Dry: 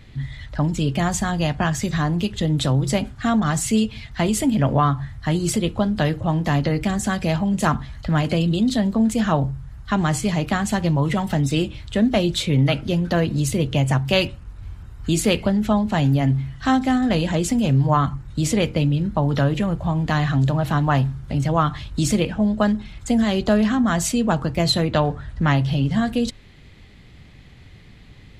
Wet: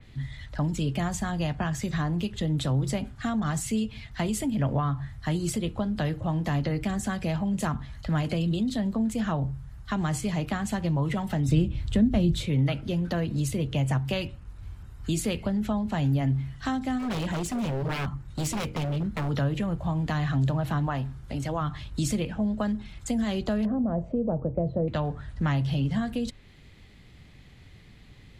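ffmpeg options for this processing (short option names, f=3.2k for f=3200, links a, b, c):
-filter_complex "[0:a]asettb=1/sr,asplit=3[a][b][c];[a]atrim=end=11.484[d];[b]atrim=start=11.48:end=12.46,asetpts=PTS-STARTPTS,afade=t=in:d=0.004:c=qsin,afade=t=out:st=0.976:d=0.004:c=qsin,lowshelf=f=330:g=11.5[e];[c]atrim=start=12.456[f];[d][e]acrossfade=d=0.004:c1=hsin:c2=qsin[g];[g][f]acrossfade=d=0.004:c1=qsin:c2=hsin,asplit=3[h][i][j];[h]afade=t=out:st=16.98:d=0.02[k];[i]aeval=exprs='0.133*(abs(mod(val(0)/0.133+3,4)-2)-1)':c=same,afade=t=in:st=16.98:d=0.02,afade=t=out:st=19.28:d=0.02[l];[j]afade=t=in:st=19.28:d=0.02[m];[k][l][m]amix=inputs=3:normalize=0,asettb=1/sr,asplit=3[n][o][p];[n]atrim=end=20.864[q];[o]atrim=start=20.86:end=21.61,asetpts=PTS-STARTPTS,afade=t=in:d=0.004:c=qsin,afade=t=out:st=0.746:d=0.004:c=qsin,equalizer=f=150:t=o:w=0.86:g=-6.5[r];[p]atrim=start=21.606[s];[q][r]acrossfade=d=0.004:c1=hsin:c2=qsin[t];[t][s]acrossfade=d=0.004:c1=qsin:c2=hsin,asettb=1/sr,asplit=3[u][v][w];[u]atrim=end=23.654[x];[v]atrim=start=23.65:end=24.88,asetpts=PTS-STARTPTS,afade=t=in:d=0.004:c=qsin,afade=t=out:st=1.226:d=0.004:c=qsin,lowpass=f=550:t=q:w=4[y];[w]atrim=start=24.876[z];[x][y]acrossfade=d=0.004:c1=hsin:c2=qsin[aa];[aa][z]acrossfade=d=0.004:c1=qsin:c2=hsin,highshelf=f=8.2k:g=5.5,acrossover=split=180[ab][ac];[ac]acompressor=threshold=-23dB:ratio=3[ad];[ab][ad]amix=inputs=2:normalize=0,adynamicequalizer=threshold=0.00708:dfrequency=3600:dqfactor=0.7:tfrequency=3600:tqfactor=0.7:attack=5:release=100:ratio=0.375:range=2.5:mode=cutabove:tftype=highshelf,volume=-5.5dB"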